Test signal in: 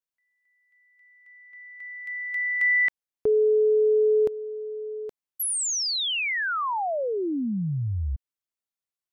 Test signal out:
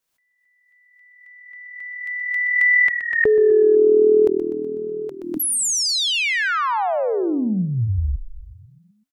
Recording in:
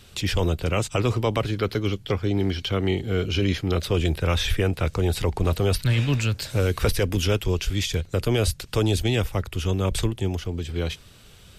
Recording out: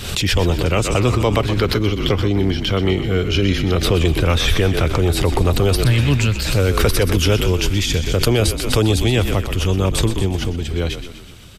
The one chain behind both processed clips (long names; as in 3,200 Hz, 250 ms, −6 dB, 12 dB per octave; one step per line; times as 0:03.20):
echo with shifted repeats 124 ms, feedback 57%, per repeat −40 Hz, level −10 dB
background raised ahead of every attack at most 57 dB per second
level +5.5 dB